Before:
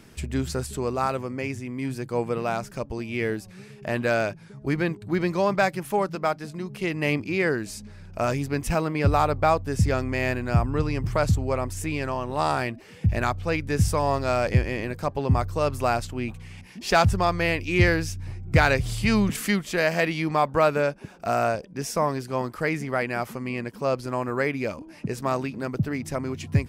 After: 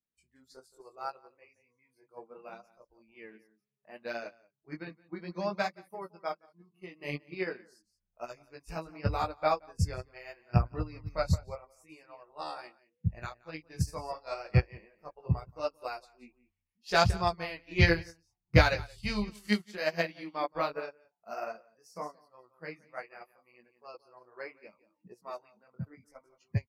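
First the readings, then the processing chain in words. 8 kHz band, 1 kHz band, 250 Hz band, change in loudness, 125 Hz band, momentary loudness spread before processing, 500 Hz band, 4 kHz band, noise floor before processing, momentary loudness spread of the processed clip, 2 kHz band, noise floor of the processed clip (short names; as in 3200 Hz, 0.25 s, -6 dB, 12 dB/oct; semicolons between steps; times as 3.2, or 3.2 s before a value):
-13.5 dB, -10.0 dB, -12.0 dB, -7.5 dB, -8.0 dB, 10 LU, -11.0 dB, -5.5 dB, -46 dBFS, 23 LU, -8.5 dB, -83 dBFS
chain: spectral noise reduction 20 dB; dynamic EQ 4400 Hz, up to +7 dB, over -49 dBFS, Q 1.9; vibrato 3.9 Hz 20 cents; chorus voices 2, 0.7 Hz, delay 20 ms, depth 4.1 ms; outdoor echo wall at 30 m, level -11 dB; upward expander 2.5:1, over -35 dBFS; gain +2 dB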